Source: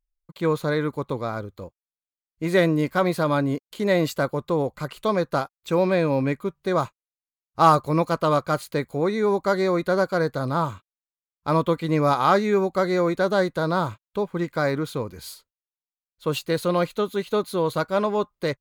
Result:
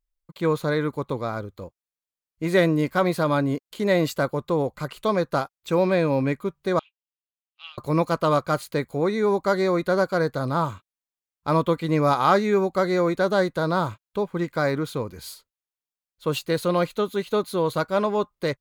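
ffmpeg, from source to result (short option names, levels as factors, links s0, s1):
-filter_complex "[0:a]asettb=1/sr,asplit=3[s0][s1][s2];[s0]atrim=end=6.794[s3];[s1]atrim=start=6.79:end=7.78,asetpts=PTS-STARTPTS,afade=t=in:d=0.004:c=qsin,afade=t=out:st=0.986:d=0.004:c=qsin,asuperpass=centerf=2900:order=4:qfactor=3.9[s4];[s2]atrim=start=7.776[s5];[s3][s4]acrossfade=d=0.004:c1=hsin:c2=qsin[s6];[s6][s5]acrossfade=d=0.004:c1=qsin:c2=hsin"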